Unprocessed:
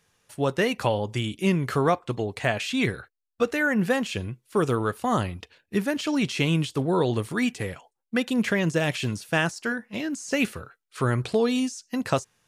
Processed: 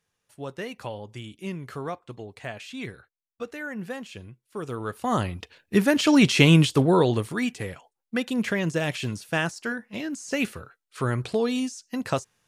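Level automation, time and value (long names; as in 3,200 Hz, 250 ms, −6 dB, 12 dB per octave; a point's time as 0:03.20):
0:04.61 −11 dB
0:05.08 −1 dB
0:06.10 +7.5 dB
0:06.68 +7.5 dB
0:07.41 −2 dB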